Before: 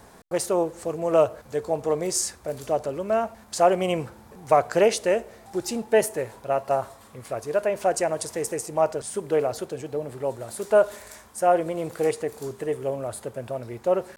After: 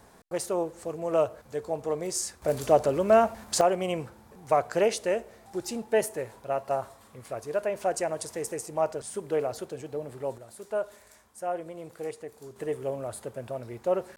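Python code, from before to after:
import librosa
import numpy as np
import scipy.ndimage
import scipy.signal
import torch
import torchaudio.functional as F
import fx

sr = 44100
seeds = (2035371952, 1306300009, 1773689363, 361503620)

y = fx.gain(x, sr, db=fx.steps((0.0, -5.5), (2.42, 4.0), (3.61, -5.0), (10.38, -12.0), (12.56, -4.0)))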